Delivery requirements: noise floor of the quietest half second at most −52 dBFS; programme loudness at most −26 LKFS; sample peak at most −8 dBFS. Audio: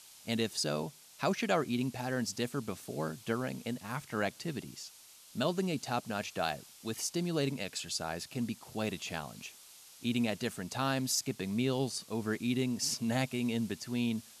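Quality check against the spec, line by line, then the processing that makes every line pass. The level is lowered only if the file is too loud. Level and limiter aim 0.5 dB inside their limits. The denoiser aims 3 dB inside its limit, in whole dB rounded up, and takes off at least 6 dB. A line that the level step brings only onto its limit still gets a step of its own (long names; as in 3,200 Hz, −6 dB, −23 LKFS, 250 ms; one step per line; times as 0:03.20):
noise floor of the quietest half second −56 dBFS: in spec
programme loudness −35.0 LKFS: in spec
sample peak −17.5 dBFS: in spec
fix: no processing needed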